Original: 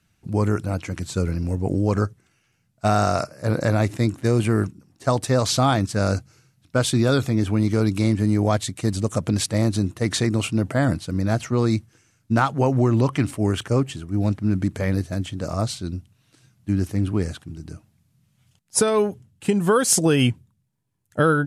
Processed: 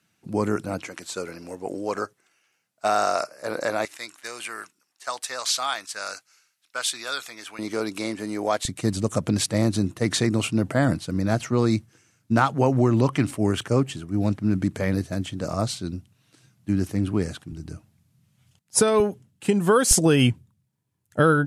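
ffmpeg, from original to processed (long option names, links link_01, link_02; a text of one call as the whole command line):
ffmpeg -i in.wav -af "asetnsamples=nb_out_samples=441:pad=0,asendcmd='0.88 highpass f 470;3.85 highpass f 1300;7.59 highpass f 430;8.65 highpass f 110;17.52 highpass f 40;19 highpass f 150;19.91 highpass f 43',highpass=190" out.wav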